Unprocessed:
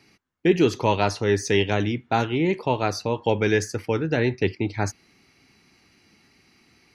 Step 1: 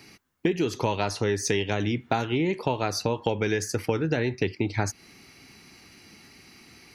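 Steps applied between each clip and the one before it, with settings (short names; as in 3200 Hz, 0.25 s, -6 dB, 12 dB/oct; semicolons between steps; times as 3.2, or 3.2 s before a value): compressor 12:1, threshold -28 dBFS, peak gain reduction 16 dB; high shelf 8200 Hz +9 dB; gain +6.5 dB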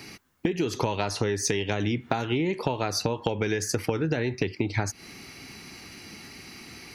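compressor, threshold -30 dBFS, peak gain reduction 10.5 dB; gain +7 dB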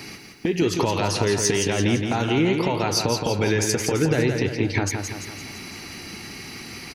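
limiter -17 dBFS, peak gain reduction 10.5 dB; on a send: feedback echo 0.169 s, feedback 51%, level -5.5 dB; on the sum: gain +6 dB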